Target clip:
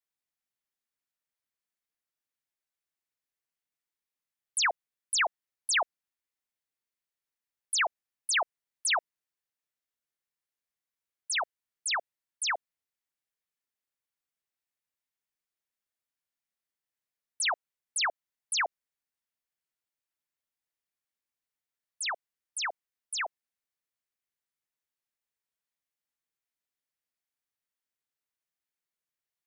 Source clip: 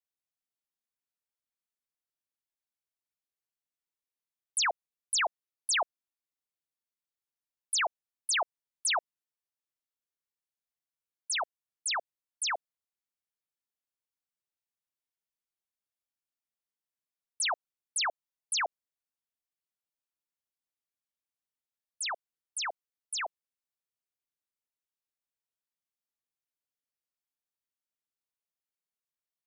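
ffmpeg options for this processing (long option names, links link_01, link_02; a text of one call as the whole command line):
ffmpeg -i in.wav -af "equalizer=frequency=1900:width_type=o:width=0.77:gain=4.5" out.wav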